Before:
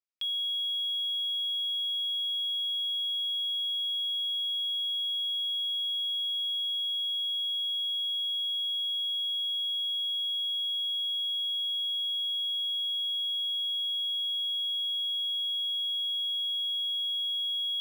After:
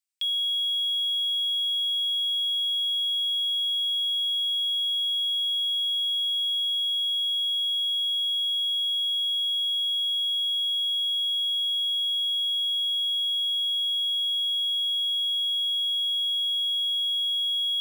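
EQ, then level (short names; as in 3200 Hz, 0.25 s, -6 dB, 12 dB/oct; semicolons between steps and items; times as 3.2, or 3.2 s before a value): Bessel high-pass 2200 Hz, order 4; bell 8300 Hz +8 dB 0.31 oct; +6.0 dB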